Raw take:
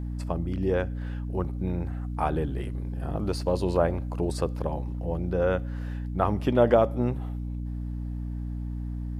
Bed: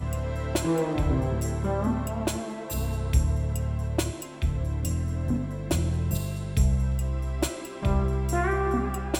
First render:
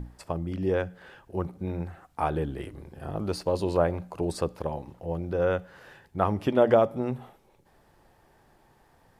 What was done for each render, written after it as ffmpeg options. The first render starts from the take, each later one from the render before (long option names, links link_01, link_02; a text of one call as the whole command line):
ffmpeg -i in.wav -af "bandreject=frequency=60:width_type=h:width=6,bandreject=frequency=120:width_type=h:width=6,bandreject=frequency=180:width_type=h:width=6,bandreject=frequency=240:width_type=h:width=6,bandreject=frequency=300:width_type=h:width=6" out.wav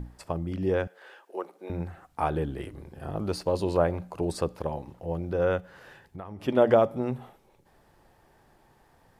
ffmpeg -i in.wav -filter_complex "[0:a]asettb=1/sr,asplit=3[link_01][link_02][link_03];[link_01]atrim=end=0.874[link_04];[link_02]atrim=start=0.87:end=1.7,asetpts=PTS-STARTPTS,afade=type=in:duration=0.004:curve=qsin,afade=type=out:start_time=0.826:duration=0.004:curve=qsin,highpass=frequency=380:width=0.5412,highpass=frequency=380:width=1.3066[link_05];[link_03]atrim=start=1.696[link_06];[link_04][link_05]acrossfade=duration=0.004:curve1=hsin:curve2=qsin[link_07];[link_07][link_06]acrossfade=duration=0.004:curve1=qsin:curve2=hsin,asplit=3[link_08][link_09][link_10];[link_08]afade=type=out:start_time=5.6:duration=0.02[link_11];[link_09]acompressor=threshold=-37dB:ratio=6:attack=3.2:release=140:knee=1:detection=peak,afade=type=in:start_time=5.6:duration=0.02,afade=type=out:start_time=6.47:duration=0.02[link_12];[link_10]afade=type=in:start_time=6.47:duration=0.02[link_13];[link_11][link_12][link_13]amix=inputs=3:normalize=0" out.wav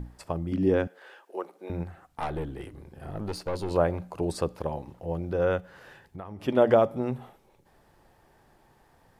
ffmpeg -i in.wav -filter_complex "[0:a]asettb=1/sr,asplit=3[link_01][link_02][link_03];[link_01]atrim=end=0.524[link_04];[link_02]atrim=start=0.52:end=1,asetpts=PTS-STARTPTS,afade=type=in:duration=0.004:curve=qsin,afade=type=out:start_time=0.476:duration=0.004:curve=qsin,equalizer=frequency=260:width_type=o:width=0.77:gain=9[link_05];[link_03]atrim=start=0.996[link_06];[link_04][link_05]acrossfade=duration=0.004:curve1=hsin:curve2=qsin[link_07];[link_07][link_06]acrossfade=duration=0.004:curve1=qsin:curve2=hsin,asettb=1/sr,asplit=3[link_08][link_09][link_10];[link_08]atrim=end=1.834[link_11];[link_09]atrim=start=1.83:end=3.71,asetpts=PTS-STARTPTS,afade=type=in:duration=0.004:curve=qsin,afade=type=out:start_time=1.876:duration=0.004:curve=qsin,aeval=exprs='(tanh(17.8*val(0)+0.5)-tanh(0.5))/17.8':channel_layout=same[link_12];[link_10]atrim=start=3.706[link_13];[link_11][link_12]acrossfade=duration=0.004:curve1=hsin:curve2=qsin[link_14];[link_14][link_13]acrossfade=duration=0.004:curve1=qsin:curve2=hsin" out.wav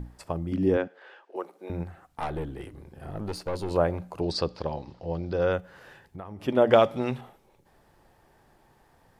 ffmpeg -i in.wav -filter_complex "[0:a]asettb=1/sr,asplit=3[link_01][link_02][link_03];[link_01]atrim=end=0.774[link_04];[link_02]atrim=start=0.77:end=1.36,asetpts=PTS-STARTPTS,afade=type=in:duration=0.004:curve=qsin,afade=type=out:start_time=0.586:duration=0.004:curve=qsin,highpass=230,lowpass=4300[link_05];[link_03]atrim=start=1.356[link_06];[link_04][link_05]acrossfade=duration=0.004:curve1=hsin:curve2=qsin[link_07];[link_07][link_06]acrossfade=duration=0.004:curve1=qsin:curve2=hsin,asettb=1/sr,asplit=3[link_08][link_09][link_10];[link_08]atrim=end=4.214[link_11];[link_09]atrim=start=4.21:end=5.53,asetpts=PTS-STARTPTS,afade=type=in:duration=0.004:curve=qsin,afade=type=out:start_time=1.316:duration=0.004:curve=qsin,lowpass=frequency=4700:width_type=q:width=4.5[link_12];[link_10]atrim=start=5.526[link_13];[link_11][link_12]acrossfade=duration=0.004:curve1=hsin:curve2=qsin[link_14];[link_14][link_13]acrossfade=duration=0.004:curve1=qsin:curve2=hsin,asettb=1/sr,asplit=3[link_15][link_16][link_17];[link_15]atrim=end=6.734[link_18];[link_16]atrim=start=6.73:end=7.21,asetpts=PTS-STARTPTS,afade=type=in:duration=0.004:curve=qsin,afade=type=out:start_time=0.476:duration=0.004:curve=qsin,equalizer=frequency=3500:width=0.53:gain=13.5[link_19];[link_17]atrim=start=7.206[link_20];[link_18][link_19]acrossfade=duration=0.004:curve1=hsin:curve2=qsin[link_21];[link_21][link_20]acrossfade=duration=0.004:curve1=qsin:curve2=hsin" out.wav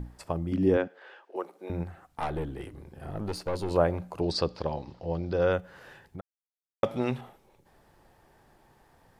ffmpeg -i in.wav -filter_complex "[0:a]asplit=3[link_01][link_02][link_03];[link_01]atrim=end=6.21,asetpts=PTS-STARTPTS,afade=type=out:start_time=6.206:duration=0.004:curve=hsin[link_04];[link_02]atrim=start=6.21:end=6.83,asetpts=PTS-STARTPTS,volume=0[link_05];[link_03]atrim=start=6.83,asetpts=PTS-STARTPTS,afade=type=in:duration=0.004:curve=hsin[link_06];[link_04][link_05][link_06]concat=n=3:v=0:a=1" out.wav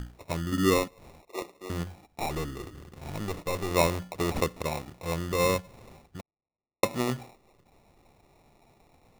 ffmpeg -i in.wav -af "acrusher=samples=28:mix=1:aa=0.000001" out.wav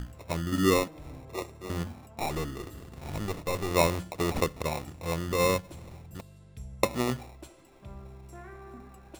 ffmpeg -i in.wav -i bed.wav -filter_complex "[1:a]volume=-21dB[link_01];[0:a][link_01]amix=inputs=2:normalize=0" out.wav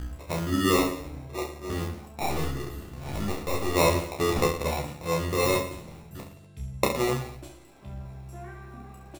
ffmpeg -i in.wav -filter_complex "[0:a]asplit=2[link_01][link_02];[link_02]adelay=14,volume=-4.5dB[link_03];[link_01][link_03]amix=inputs=2:normalize=0,asplit=2[link_04][link_05];[link_05]aecho=0:1:30|67.5|114.4|173|246.2:0.631|0.398|0.251|0.158|0.1[link_06];[link_04][link_06]amix=inputs=2:normalize=0" out.wav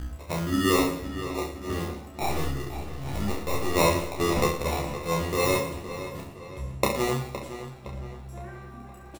ffmpeg -i in.wav -filter_complex "[0:a]asplit=2[link_01][link_02];[link_02]adelay=29,volume=-10.5dB[link_03];[link_01][link_03]amix=inputs=2:normalize=0,asplit=2[link_04][link_05];[link_05]adelay=514,lowpass=frequency=4700:poles=1,volume=-11.5dB,asplit=2[link_06][link_07];[link_07]adelay=514,lowpass=frequency=4700:poles=1,volume=0.47,asplit=2[link_08][link_09];[link_09]adelay=514,lowpass=frequency=4700:poles=1,volume=0.47,asplit=2[link_10][link_11];[link_11]adelay=514,lowpass=frequency=4700:poles=1,volume=0.47,asplit=2[link_12][link_13];[link_13]adelay=514,lowpass=frequency=4700:poles=1,volume=0.47[link_14];[link_04][link_06][link_08][link_10][link_12][link_14]amix=inputs=6:normalize=0" out.wav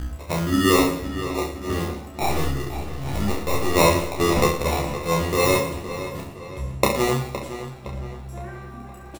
ffmpeg -i in.wav -af "volume=5dB" out.wav